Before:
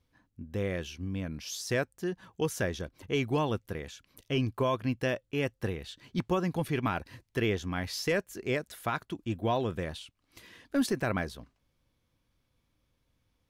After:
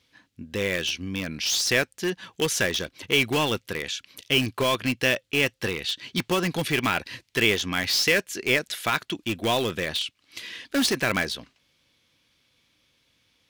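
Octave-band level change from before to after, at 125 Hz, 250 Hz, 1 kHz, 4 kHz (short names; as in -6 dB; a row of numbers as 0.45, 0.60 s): +0.5, +3.5, +5.0, +16.0 dB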